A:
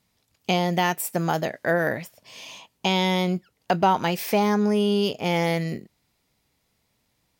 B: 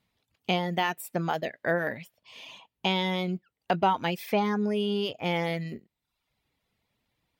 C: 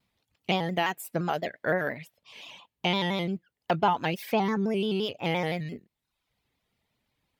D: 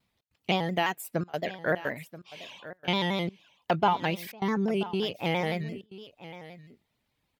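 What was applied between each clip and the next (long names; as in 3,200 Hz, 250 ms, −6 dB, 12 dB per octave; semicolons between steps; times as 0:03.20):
high shelf with overshoot 4,400 Hz −6.5 dB, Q 1.5; reverb reduction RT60 0.69 s; level −4 dB
pitch modulation by a square or saw wave square 5.8 Hz, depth 100 cents
gate pattern "xx.xxxxxxxxx.xx" 146 BPM −24 dB; single-tap delay 981 ms −16 dB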